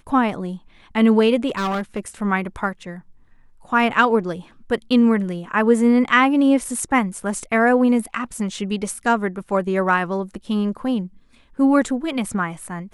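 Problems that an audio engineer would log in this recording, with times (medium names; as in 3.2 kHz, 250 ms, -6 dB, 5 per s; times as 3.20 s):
1.48–2.00 s: clipped -19.5 dBFS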